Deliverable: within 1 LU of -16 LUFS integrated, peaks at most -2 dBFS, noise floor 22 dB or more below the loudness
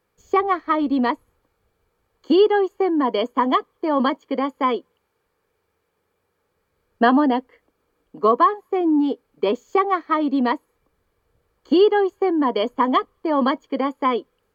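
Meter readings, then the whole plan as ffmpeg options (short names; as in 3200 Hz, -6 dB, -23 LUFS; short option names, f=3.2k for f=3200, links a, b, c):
loudness -20.5 LUFS; peak -3.5 dBFS; loudness target -16.0 LUFS
-> -af "volume=4.5dB,alimiter=limit=-2dB:level=0:latency=1"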